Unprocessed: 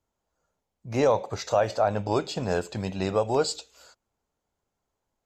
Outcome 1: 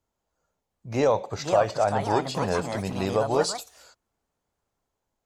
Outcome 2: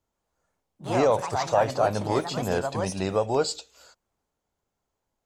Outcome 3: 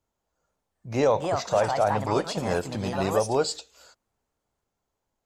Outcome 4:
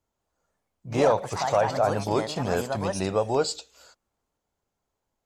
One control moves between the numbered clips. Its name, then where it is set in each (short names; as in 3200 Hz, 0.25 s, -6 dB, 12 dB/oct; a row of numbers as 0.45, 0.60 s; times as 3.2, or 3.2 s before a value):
echoes that change speed, time: 0.707, 0.13, 0.47, 0.198 s